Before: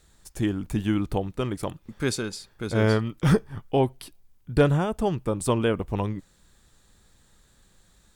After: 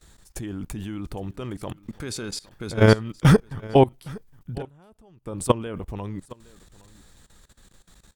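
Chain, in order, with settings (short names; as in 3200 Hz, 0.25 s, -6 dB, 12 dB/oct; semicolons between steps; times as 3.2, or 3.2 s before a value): 4.57–5.27 flipped gate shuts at -22 dBFS, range -24 dB; level quantiser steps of 20 dB; echo 0.814 s -22 dB; gain +8 dB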